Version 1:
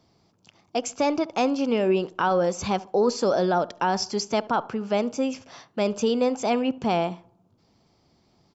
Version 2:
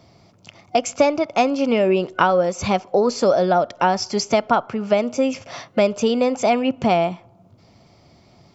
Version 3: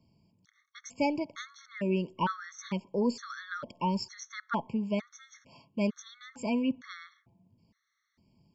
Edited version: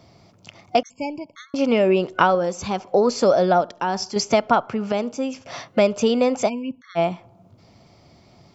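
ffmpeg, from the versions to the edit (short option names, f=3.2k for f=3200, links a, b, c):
-filter_complex "[2:a]asplit=2[a][b];[0:a]asplit=3[c][d][e];[1:a]asplit=6[f][g][h][i][j][k];[f]atrim=end=0.832[l];[a]atrim=start=0.828:end=1.542[m];[g]atrim=start=1.538:end=2.352[n];[c]atrim=start=2.348:end=2.802[o];[h]atrim=start=2.798:end=3.612[p];[d]atrim=start=3.608:end=4.162[q];[i]atrim=start=4.158:end=4.922[r];[e]atrim=start=4.918:end=5.452[s];[j]atrim=start=5.448:end=6.5[t];[b]atrim=start=6.46:end=6.99[u];[k]atrim=start=6.95[v];[l][m]acrossfade=d=0.004:c1=hsin:c2=hsin[w];[w][n]acrossfade=d=0.004:c1=hsin:c2=hsin[x];[x][o]acrossfade=d=0.004:c1=hsin:c2=hsin[y];[y][p]acrossfade=d=0.004:c1=hsin:c2=hsin[z];[z][q]acrossfade=d=0.004:c1=hsin:c2=hsin[aa];[aa][r]acrossfade=d=0.004:c1=hsin:c2=hsin[ab];[ab][s]acrossfade=d=0.004:c1=hsin:c2=hsin[ac];[ac][t]acrossfade=d=0.004:c1=hsin:c2=hsin[ad];[ad][u]acrossfade=d=0.04:c1=tri:c2=tri[ae];[ae][v]acrossfade=d=0.04:c1=tri:c2=tri"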